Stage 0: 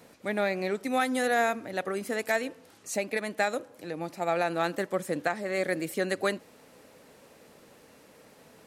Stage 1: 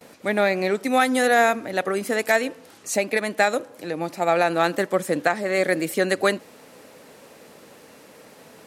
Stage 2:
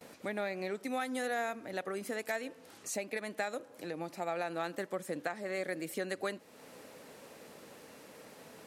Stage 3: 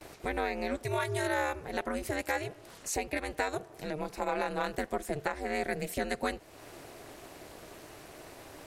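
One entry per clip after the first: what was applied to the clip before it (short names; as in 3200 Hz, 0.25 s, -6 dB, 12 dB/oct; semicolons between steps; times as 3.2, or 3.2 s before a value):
HPF 130 Hz 6 dB/oct; gate with hold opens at -50 dBFS; gain +8 dB
compressor 2:1, threshold -36 dBFS, peak gain reduction 12.5 dB; gain -5.5 dB
ring modulator 150 Hz; gain +7 dB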